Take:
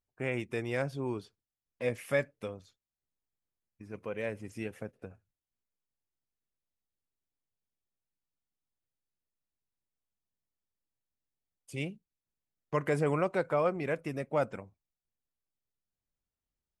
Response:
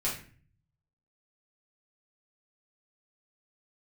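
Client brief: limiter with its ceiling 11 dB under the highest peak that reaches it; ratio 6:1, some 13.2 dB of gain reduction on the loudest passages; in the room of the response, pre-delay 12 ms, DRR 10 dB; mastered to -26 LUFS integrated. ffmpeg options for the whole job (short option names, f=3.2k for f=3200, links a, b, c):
-filter_complex "[0:a]acompressor=threshold=-39dB:ratio=6,alimiter=level_in=14dB:limit=-24dB:level=0:latency=1,volume=-14dB,asplit=2[a][b];[1:a]atrim=start_sample=2205,adelay=12[c];[b][c]afir=irnorm=-1:irlink=0,volume=-16dB[d];[a][d]amix=inputs=2:normalize=0,volume=23.5dB"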